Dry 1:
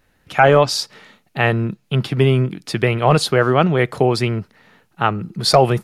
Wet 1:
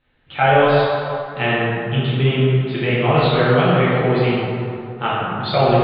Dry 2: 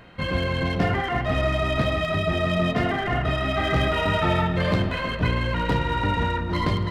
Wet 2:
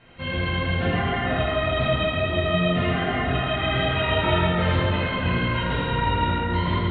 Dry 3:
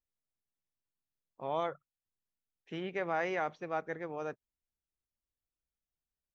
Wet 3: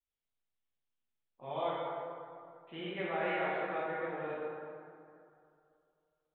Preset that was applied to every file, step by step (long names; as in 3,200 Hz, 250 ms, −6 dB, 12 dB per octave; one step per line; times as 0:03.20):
Butterworth low-pass 4,000 Hz 72 dB per octave
parametric band 3,100 Hz +6 dB 0.85 octaves
dense smooth reverb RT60 2.5 s, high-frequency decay 0.5×, DRR −9.5 dB
level −10.5 dB